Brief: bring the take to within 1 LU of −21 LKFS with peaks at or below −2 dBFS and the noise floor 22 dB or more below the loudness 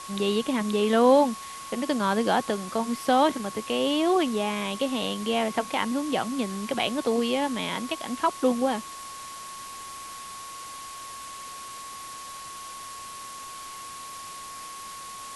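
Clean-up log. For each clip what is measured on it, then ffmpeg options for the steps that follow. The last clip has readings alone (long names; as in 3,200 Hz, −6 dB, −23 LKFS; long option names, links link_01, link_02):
interfering tone 1,100 Hz; level of the tone −39 dBFS; background noise floor −40 dBFS; target noise floor −48 dBFS; integrated loudness −25.5 LKFS; sample peak −8.0 dBFS; target loudness −21.0 LKFS
→ -af "bandreject=frequency=1100:width=30"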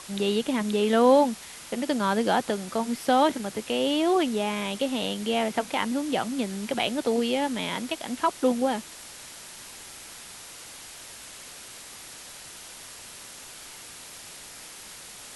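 interfering tone none found; background noise floor −44 dBFS; target noise floor −48 dBFS
→ -af "afftdn=noise_reduction=6:noise_floor=-44"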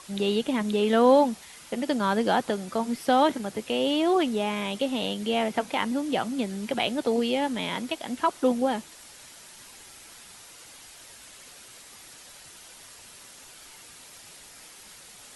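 background noise floor −49 dBFS; integrated loudness −26.0 LKFS; sample peak −8.5 dBFS; target loudness −21.0 LKFS
→ -af "volume=5dB"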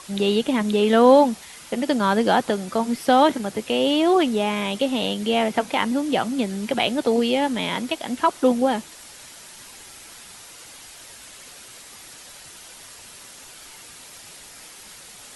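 integrated loudness −21.0 LKFS; sample peak −3.5 dBFS; background noise floor −44 dBFS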